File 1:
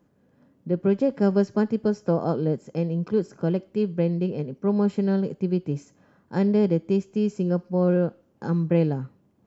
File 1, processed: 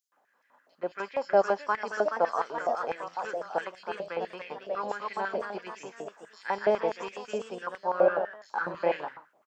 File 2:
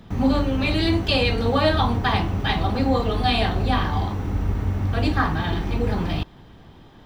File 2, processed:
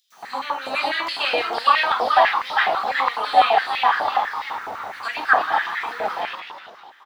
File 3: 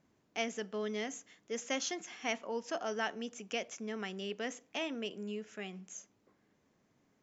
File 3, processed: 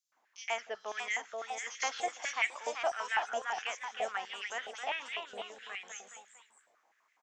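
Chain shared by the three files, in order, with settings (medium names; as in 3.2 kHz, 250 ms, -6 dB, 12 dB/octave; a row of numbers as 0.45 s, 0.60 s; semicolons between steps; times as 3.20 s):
bands offset in time highs, lows 120 ms, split 4.1 kHz; ever faster or slower copies 520 ms, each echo +1 st, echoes 3, each echo -6 dB; step-sequenced high-pass 12 Hz 670–2000 Hz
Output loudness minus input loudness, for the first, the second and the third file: -6.0 LU, +1.5 LU, +2.5 LU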